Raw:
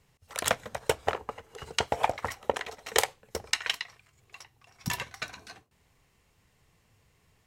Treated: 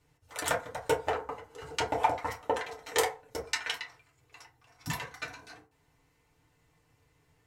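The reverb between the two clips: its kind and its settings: FDN reverb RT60 0.32 s, low-frequency decay 0.85×, high-frequency decay 0.45×, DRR -4 dB; gain -7 dB

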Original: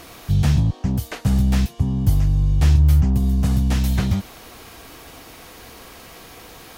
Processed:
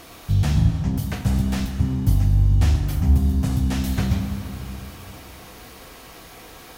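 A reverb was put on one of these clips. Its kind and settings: plate-style reverb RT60 3 s, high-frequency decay 0.55×, DRR 4 dB; gain -2.5 dB

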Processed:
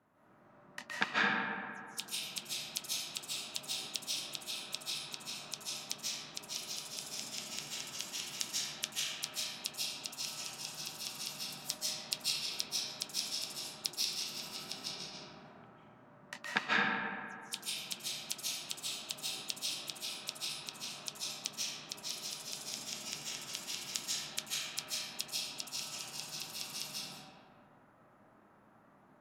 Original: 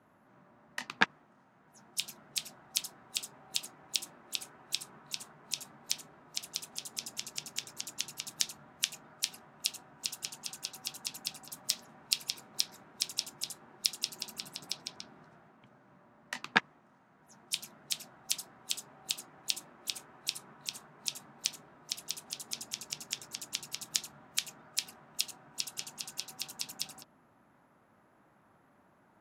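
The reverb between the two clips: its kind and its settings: digital reverb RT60 2.2 s, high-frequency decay 0.45×, pre-delay 0.11 s, DRR -8 dB; gain -7 dB

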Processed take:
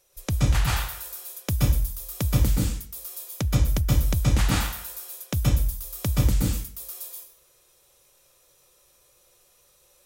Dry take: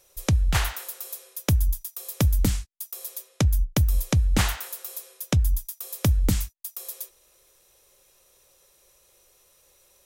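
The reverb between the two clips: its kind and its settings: plate-style reverb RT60 0.51 s, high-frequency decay 0.95×, pre-delay 0.115 s, DRR -4 dB; gain -5.5 dB

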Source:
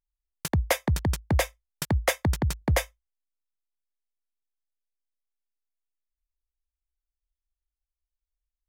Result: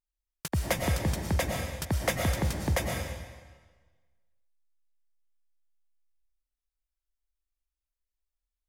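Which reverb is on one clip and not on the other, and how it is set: digital reverb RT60 1.4 s, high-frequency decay 0.95×, pre-delay 75 ms, DRR 1 dB; gain -4.5 dB

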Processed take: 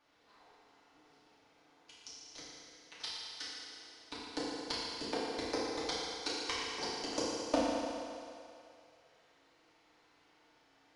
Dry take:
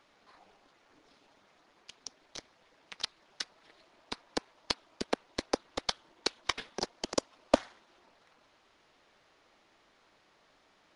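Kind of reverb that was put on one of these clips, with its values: FDN reverb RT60 2.5 s, low-frequency decay 0.7×, high-frequency decay 0.95×, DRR -9.5 dB; gain -11.5 dB

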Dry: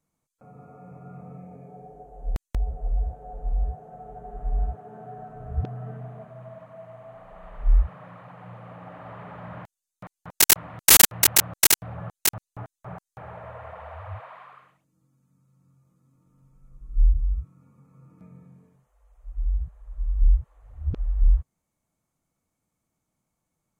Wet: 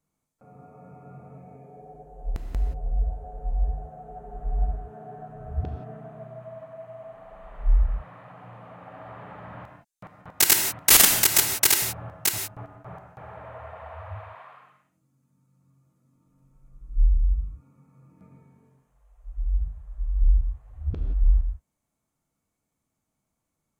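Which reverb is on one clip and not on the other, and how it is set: non-linear reverb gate 0.2 s flat, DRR 3.5 dB; gain -2 dB

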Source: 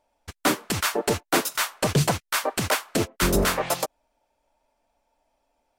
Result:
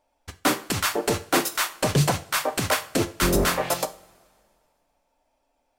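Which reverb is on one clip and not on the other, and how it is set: two-slope reverb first 0.37 s, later 2.1 s, from -21 dB, DRR 9.5 dB

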